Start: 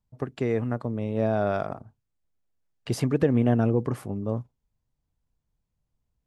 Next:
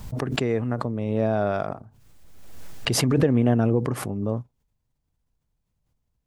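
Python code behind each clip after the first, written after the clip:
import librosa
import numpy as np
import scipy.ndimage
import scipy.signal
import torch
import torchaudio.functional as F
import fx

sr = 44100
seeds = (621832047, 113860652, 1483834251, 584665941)

y = fx.pre_swell(x, sr, db_per_s=35.0)
y = y * librosa.db_to_amplitude(1.0)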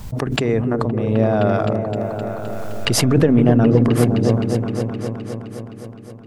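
y = fx.echo_opening(x, sr, ms=259, hz=400, octaves=1, feedback_pct=70, wet_db=-3)
y = y * librosa.db_to_amplitude(5.0)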